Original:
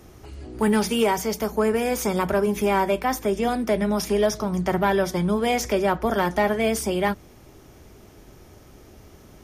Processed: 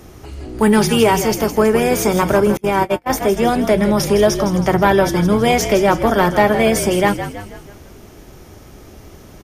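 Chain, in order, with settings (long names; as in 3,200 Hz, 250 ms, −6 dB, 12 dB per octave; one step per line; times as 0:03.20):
echo with shifted repeats 161 ms, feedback 49%, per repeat −52 Hz, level −10 dB
0:02.57–0:03.10: noise gate −19 dBFS, range −35 dB
level +7.5 dB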